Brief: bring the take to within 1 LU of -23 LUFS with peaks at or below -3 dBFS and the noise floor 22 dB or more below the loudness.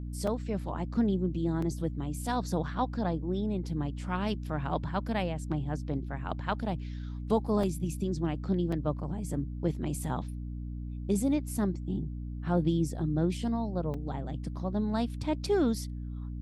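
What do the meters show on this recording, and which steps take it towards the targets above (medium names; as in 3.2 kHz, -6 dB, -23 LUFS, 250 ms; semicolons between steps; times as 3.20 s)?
dropouts 5; longest dropout 4.0 ms; hum 60 Hz; highest harmonic 300 Hz; hum level -35 dBFS; loudness -32.5 LUFS; peak level -16.0 dBFS; loudness target -23.0 LUFS
-> interpolate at 0.27/1.62/7.63/8.72/13.94 s, 4 ms; hum notches 60/120/180/240/300 Hz; trim +9.5 dB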